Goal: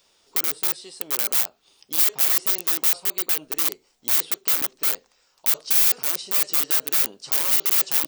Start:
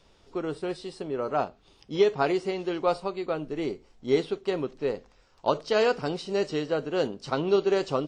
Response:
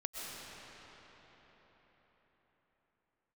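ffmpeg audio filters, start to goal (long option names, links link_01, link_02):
-af "aeval=exprs='(mod(17.8*val(0)+1,2)-1)/17.8':channel_layout=same,aemphasis=mode=production:type=riaa,volume=-3dB"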